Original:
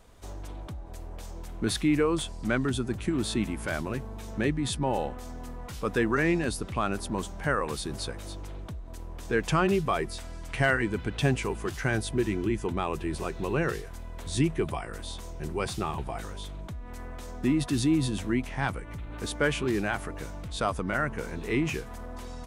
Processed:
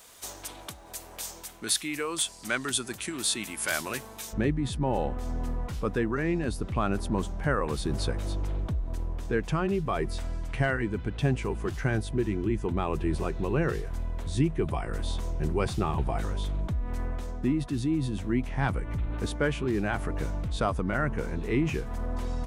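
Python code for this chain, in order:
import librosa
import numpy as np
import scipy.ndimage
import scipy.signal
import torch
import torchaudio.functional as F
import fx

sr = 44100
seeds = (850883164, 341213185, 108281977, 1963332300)

y = fx.tilt_eq(x, sr, slope=fx.steps((0.0, 4.0), (4.32, -1.5)))
y = fx.rider(y, sr, range_db=5, speed_s=0.5)
y = y * 10.0 ** (-1.5 / 20.0)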